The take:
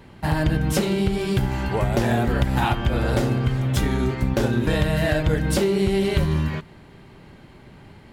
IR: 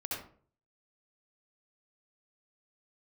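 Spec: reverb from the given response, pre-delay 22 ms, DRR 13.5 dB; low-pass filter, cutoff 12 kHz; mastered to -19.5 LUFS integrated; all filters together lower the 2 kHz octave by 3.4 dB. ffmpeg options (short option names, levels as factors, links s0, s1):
-filter_complex "[0:a]lowpass=12000,equalizer=f=2000:t=o:g=-4.5,asplit=2[s0][s1];[1:a]atrim=start_sample=2205,adelay=22[s2];[s1][s2]afir=irnorm=-1:irlink=0,volume=0.158[s3];[s0][s3]amix=inputs=2:normalize=0,volume=1.41"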